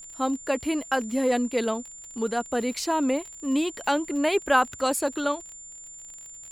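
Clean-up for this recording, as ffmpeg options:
ffmpeg -i in.wav -af "adeclick=threshold=4,bandreject=frequency=7200:width=30,agate=range=-21dB:threshold=-36dB" out.wav

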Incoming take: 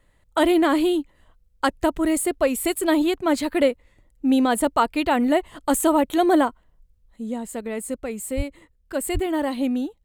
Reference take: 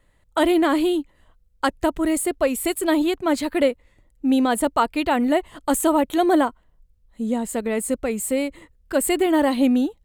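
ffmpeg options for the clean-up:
ffmpeg -i in.wav -filter_complex "[0:a]asplit=3[link_01][link_02][link_03];[link_01]afade=type=out:start_time=8.36:duration=0.02[link_04];[link_02]highpass=frequency=140:width=0.5412,highpass=frequency=140:width=1.3066,afade=type=in:start_time=8.36:duration=0.02,afade=type=out:start_time=8.48:duration=0.02[link_05];[link_03]afade=type=in:start_time=8.48:duration=0.02[link_06];[link_04][link_05][link_06]amix=inputs=3:normalize=0,asplit=3[link_07][link_08][link_09];[link_07]afade=type=out:start_time=9.13:duration=0.02[link_10];[link_08]highpass=frequency=140:width=0.5412,highpass=frequency=140:width=1.3066,afade=type=in:start_time=9.13:duration=0.02,afade=type=out:start_time=9.25:duration=0.02[link_11];[link_09]afade=type=in:start_time=9.25:duration=0.02[link_12];[link_10][link_11][link_12]amix=inputs=3:normalize=0,asetnsamples=nb_out_samples=441:pad=0,asendcmd='7.16 volume volume 5.5dB',volume=0dB" out.wav

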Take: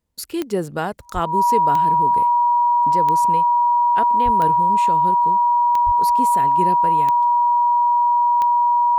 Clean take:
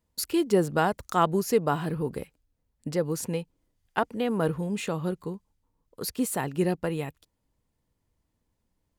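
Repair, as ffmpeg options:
ffmpeg -i in.wav -filter_complex "[0:a]adeclick=threshold=4,bandreject=frequency=960:width=30,asplit=3[link_01][link_02][link_03];[link_01]afade=type=out:start_time=1.13:duration=0.02[link_04];[link_02]highpass=frequency=140:width=0.5412,highpass=frequency=140:width=1.3066,afade=type=in:start_time=1.13:duration=0.02,afade=type=out:start_time=1.25:duration=0.02[link_05];[link_03]afade=type=in:start_time=1.25:duration=0.02[link_06];[link_04][link_05][link_06]amix=inputs=3:normalize=0,asplit=3[link_07][link_08][link_09];[link_07]afade=type=out:start_time=4.24:duration=0.02[link_10];[link_08]highpass=frequency=140:width=0.5412,highpass=frequency=140:width=1.3066,afade=type=in:start_time=4.24:duration=0.02,afade=type=out:start_time=4.36:duration=0.02[link_11];[link_09]afade=type=in:start_time=4.36:duration=0.02[link_12];[link_10][link_11][link_12]amix=inputs=3:normalize=0,asplit=3[link_13][link_14][link_15];[link_13]afade=type=out:start_time=5.85:duration=0.02[link_16];[link_14]highpass=frequency=140:width=0.5412,highpass=frequency=140:width=1.3066,afade=type=in:start_time=5.85:duration=0.02,afade=type=out:start_time=5.97:duration=0.02[link_17];[link_15]afade=type=in:start_time=5.97:duration=0.02[link_18];[link_16][link_17][link_18]amix=inputs=3:normalize=0" out.wav

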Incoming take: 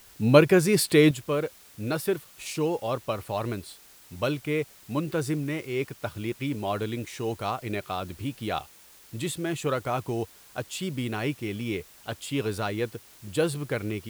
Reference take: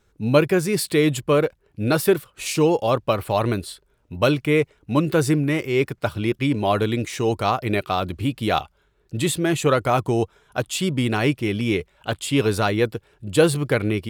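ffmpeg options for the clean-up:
ffmpeg -i in.wav -af "afwtdn=0.0022,asetnsamples=nb_out_samples=441:pad=0,asendcmd='1.11 volume volume 9dB',volume=0dB" out.wav

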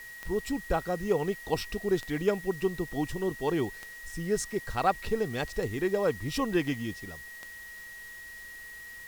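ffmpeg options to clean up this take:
ffmpeg -i in.wav -af "adeclick=threshold=4,bandreject=frequency=1900:width=30,afwtdn=0.0022" out.wav

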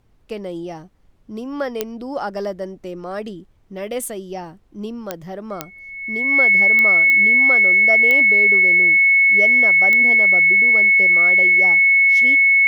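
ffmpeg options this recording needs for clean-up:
ffmpeg -i in.wav -af "adeclick=threshold=4,bandreject=frequency=2200:width=30,agate=range=-21dB:threshold=-35dB" out.wav

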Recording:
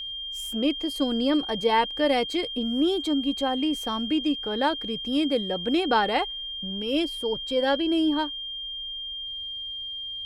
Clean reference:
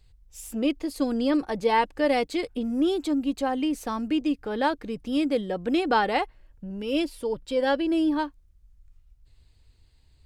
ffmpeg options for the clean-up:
ffmpeg -i in.wav -af "bandreject=frequency=3200:width=30" out.wav

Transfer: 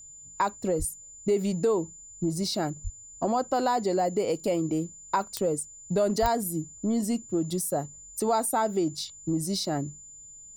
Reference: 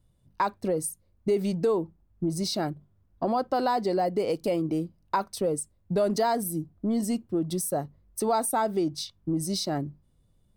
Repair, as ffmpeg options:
ffmpeg -i in.wav -filter_complex "[0:a]adeclick=threshold=4,bandreject=frequency=7100:width=30,asplit=3[link_01][link_02][link_03];[link_01]afade=type=out:start_time=0.78:duration=0.02[link_04];[link_02]highpass=frequency=140:width=0.5412,highpass=frequency=140:width=1.3066,afade=type=in:start_time=0.78:duration=0.02,afade=type=out:start_time=0.9:duration=0.02[link_05];[link_03]afade=type=in:start_time=0.9:duration=0.02[link_06];[link_04][link_05][link_06]amix=inputs=3:normalize=0,asplit=3[link_07][link_08][link_09];[link_07]afade=type=out:start_time=2.83:duration=0.02[link_10];[link_08]highpass=frequency=140:width=0.5412,highpass=frequency=140:width=1.3066,afade=type=in:start_time=2.83:duration=0.02,afade=type=out:start_time=2.95:duration=0.02[link_11];[link_09]afade=type=in:start_time=2.95:duration=0.02[link_12];[link_10][link_11][link_12]amix=inputs=3:normalize=0,asplit=3[link_13][link_14][link_15];[link_13]afade=type=out:start_time=6.21:duration=0.02[link_16];[link_14]highpass=frequency=140:width=0.5412,highpass=frequency=140:width=1.3066,afade=type=in:start_time=6.21:duration=0.02,afade=type=out:start_time=6.33:duration=0.02[link_17];[link_15]afade=type=in:start_time=6.33:duration=0.02[link_18];[link_16][link_17][link_18]amix=inputs=3:normalize=0" out.wav

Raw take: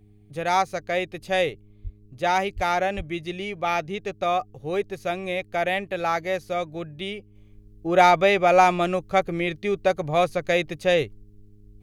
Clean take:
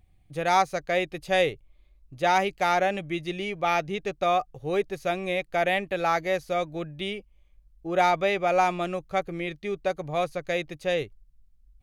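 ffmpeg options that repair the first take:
ffmpeg -i in.wav -filter_complex "[0:a]bandreject=frequency=103.5:width_type=h:width=4,bandreject=frequency=207:width_type=h:width=4,bandreject=frequency=310.5:width_type=h:width=4,bandreject=frequency=414:width_type=h:width=4,asplit=3[link_01][link_02][link_03];[link_01]afade=type=out:start_time=1.83:duration=0.02[link_04];[link_02]highpass=frequency=140:width=0.5412,highpass=frequency=140:width=1.3066,afade=type=in:start_time=1.83:duration=0.02,afade=type=out:start_time=1.95:duration=0.02[link_05];[link_03]afade=type=in:start_time=1.95:duration=0.02[link_06];[link_04][link_05][link_06]amix=inputs=3:normalize=0,asplit=3[link_07][link_08][link_09];[link_07]afade=type=out:start_time=2.55:duration=0.02[link_10];[link_08]highpass=frequency=140:width=0.5412,highpass=frequency=140:width=1.3066,afade=type=in:start_time=2.55:duration=0.02,afade=type=out:start_time=2.67:duration=0.02[link_11];[link_09]afade=type=in:start_time=2.67:duration=0.02[link_12];[link_10][link_11][link_12]amix=inputs=3:normalize=0,asplit=3[link_13][link_14][link_15];[link_13]afade=type=out:start_time=2.96:duration=0.02[link_16];[link_14]highpass=frequency=140:width=0.5412,highpass=frequency=140:width=1.3066,afade=type=in:start_time=2.96:duration=0.02,afade=type=out:start_time=3.08:duration=0.02[link_17];[link_15]afade=type=in:start_time=3.08:duration=0.02[link_18];[link_16][link_17][link_18]amix=inputs=3:normalize=0,asetnsamples=nb_out_samples=441:pad=0,asendcmd='7.35 volume volume -6dB',volume=0dB" out.wav

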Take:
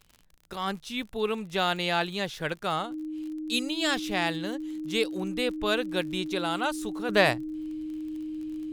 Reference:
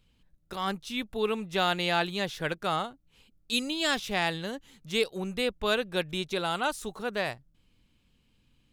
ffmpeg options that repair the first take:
ffmpeg -i in.wav -af "adeclick=threshold=4,bandreject=frequency=310:width=30,asetnsamples=nb_out_samples=441:pad=0,asendcmd='7.09 volume volume -9.5dB',volume=0dB" out.wav

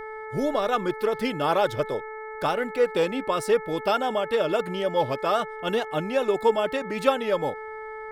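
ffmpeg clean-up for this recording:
ffmpeg -i in.wav -af "bandreject=frequency=435.1:width_type=h:width=4,bandreject=frequency=870.2:width_type=h:width=4,bandreject=frequency=1305.3:width_type=h:width=4,bandreject=frequency=1740.4:width_type=h:width=4,bandreject=frequency=2175.5:width_type=h:width=4" out.wav

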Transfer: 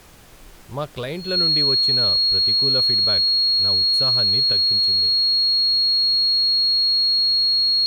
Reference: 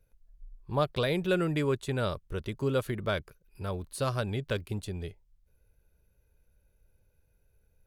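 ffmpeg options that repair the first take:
ffmpeg -i in.wav -af "bandreject=frequency=4300:width=30,agate=range=-21dB:threshold=-32dB,asetnsamples=nb_out_samples=441:pad=0,asendcmd='4.52 volume volume 4dB',volume=0dB" out.wav

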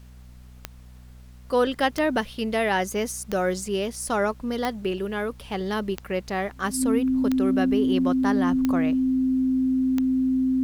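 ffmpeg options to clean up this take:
ffmpeg -i in.wav -af "adeclick=threshold=4,bandreject=frequency=61.8:width_type=h:width=4,bandreject=frequency=123.6:width_type=h:width=4,bandreject=frequency=185.4:width_type=h:width=4,bandreject=frequency=247.2:width_type=h:width=4,bandreject=frequency=260:width=30,agate=range=-21dB:threshold=-38dB" out.wav

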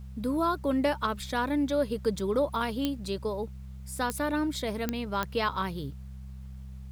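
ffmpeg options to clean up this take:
ffmpeg -i in.wav -af "adeclick=threshold=4,bandreject=frequency=65.3:width_type=h:width=4,bandreject=frequency=130.6:width_type=h:width=4,bandreject=frequency=195.9:width_type=h:width=4,agate=range=-21dB:threshold=-34dB" out.wav

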